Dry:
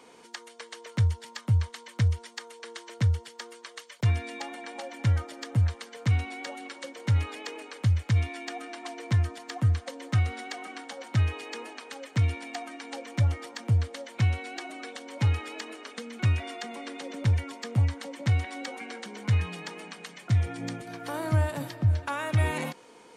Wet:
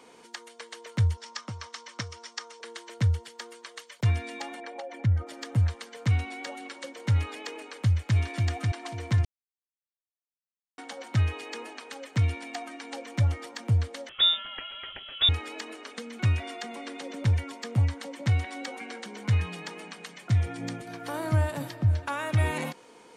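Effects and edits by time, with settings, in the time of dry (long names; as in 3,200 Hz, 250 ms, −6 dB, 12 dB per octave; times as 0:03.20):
0:01.17–0:02.61: loudspeaker in its box 270–8,100 Hz, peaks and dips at 400 Hz −5 dB, 1,200 Hz +6 dB, 5,500 Hz +9 dB
0:04.60–0:05.27: spectral envelope exaggerated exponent 1.5
0:07.57–0:08.17: delay throw 540 ms, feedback 25%, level −3.5 dB
0:09.25–0:10.78: silence
0:14.09–0:15.29: voice inversion scrambler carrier 3,600 Hz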